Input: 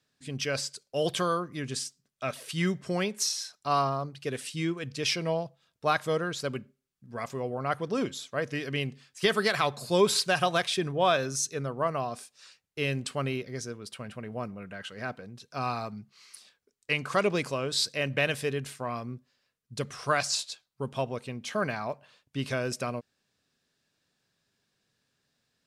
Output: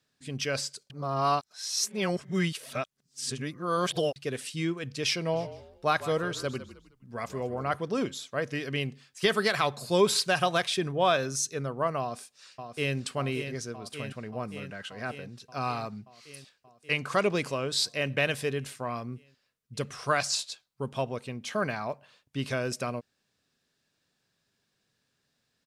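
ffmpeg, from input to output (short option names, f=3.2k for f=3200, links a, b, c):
-filter_complex "[0:a]asplit=3[a][b][c];[a]afade=t=out:st=5.32:d=0.02[d];[b]asplit=4[e][f][g][h];[f]adelay=155,afreqshift=-42,volume=-14dB[i];[g]adelay=310,afreqshift=-84,volume=-23.6dB[j];[h]adelay=465,afreqshift=-126,volume=-33.3dB[k];[e][i][j][k]amix=inputs=4:normalize=0,afade=t=in:st=5.32:d=0.02,afade=t=out:st=7.75:d=0.02[l];[c]afade=t=in:st=7.75:d=0.02[m];[d][l][m]amix=inputs=3:normalize=0,asplit=2[n][o];[o]afade=t=in:st=12:d=0.01,afade=t=out:st=12.96:d=0.01,aecho=0:1:580|1160|1740|2320|2900|3480|4060|4640|5220|5800|6380|6960:0.398107|0.29858|0.223935|0.167951|0.125964|0.0944727|0.0708545|0.0531409|0.0398557|0.0298918|0.0224188|0.0168141[p];[n][p]amix=inputs=2:normalize=0,asplit=3[q][r][s];[q]atrim=end=0.902[t];[r]atrim=start=0.898:end=4.162,asetpts=PTS-STARTPTS,areverse[u];[s]atrim=start=4.158[v];[t][u]acrossfade=d=0.004:c1=hsin:c2=hsin[w];[w][v]acrossfade=d=0.004:c1=hsin:c2=hsin"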